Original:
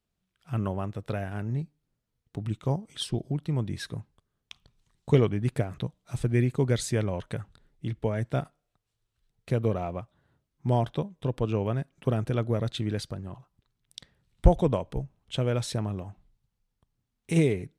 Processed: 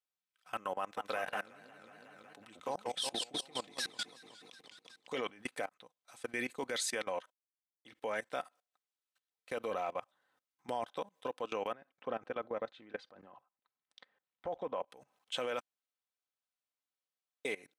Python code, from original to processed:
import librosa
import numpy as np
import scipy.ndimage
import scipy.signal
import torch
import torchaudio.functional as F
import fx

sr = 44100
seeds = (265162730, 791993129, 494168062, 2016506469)

y = fx.echo_warbled(x, sr, ms=184, feedback_pct=65, rate_hz=2.8, cents=213, wet_db=-5, at=(0.78, 5.13))
y = fx.low_shelf(y, sr, hz=130.0, db=8.5, at=(9.71, 10.89))
y = fx.spacing_loss(y, sr, db_at_10k=33, at=(11.72, 14.88))
y = fx.edit(y, sr, fx.fade_in_span(start_s=5.69, length_s=0.77),
    fx.silence(start_s=7.3, length_s=0.55),
    fx.room_tone_fill(start_s=15.6, length_s=1.85), tone=tone)
y = scipy.signal.sosfilt(scipy.signal.butter(2, 750.0, 'highpass', fs=sr, output='sos'), y)
y = y + 0.43 * np.pad(y, (int(3.9 * sr / 1000.0), 0))[:len(y)]
y = fx.level_steps(y, sr, step_db=21)
y = F.gain(torch.from_numpy(y), 6.0).numpy()